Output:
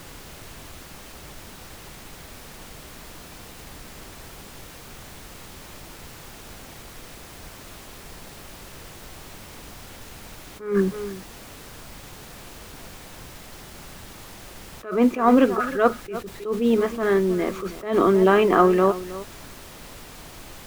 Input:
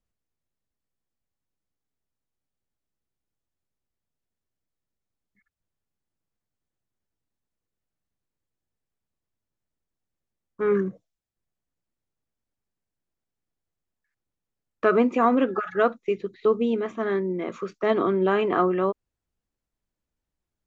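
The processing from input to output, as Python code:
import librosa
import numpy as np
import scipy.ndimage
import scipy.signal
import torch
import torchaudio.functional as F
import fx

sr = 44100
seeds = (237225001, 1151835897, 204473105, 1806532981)

p1 = fx.dmg_noise_colour(x, sr, seeds[0], colour='pink', level_db=-47.0)
p2 = p1 + fx.echo_single(p1, sr, ms=317, db=-16.0, dry=0)
p3 = fx.attack_slew(p2, sr, db_per_s=130.0)
y = F.gain(torch.from_numpy(p3), 5.5).numpy()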